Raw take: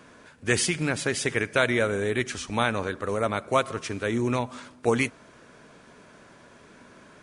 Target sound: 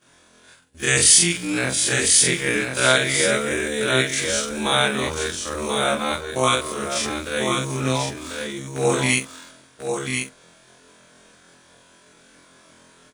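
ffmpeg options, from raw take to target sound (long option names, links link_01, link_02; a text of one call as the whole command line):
ffmpeg -i in.wav -filter_complex "[0:a]afftfilt=real='re':imag='-im':win_size=2048:overlap=0.75,aemphasis=mode=production:type=75kf,agate=range=-33dB:threshold=-50dB:ratio=3:detection=peak,equalizer=frequency=3500:width=4.1:gain=5,asplit=2[link_01][link_02];[link_02]aeval=exprs='val(0)*gte(abs(val(0)),0.0126)':channel_layout=same,volume=-7dB[link_03];[link_01][link_03]amix=inputs=2:normalize=0,atempo=0.55,aecho=1:1:1040:0.531,volume=3dB" out.wav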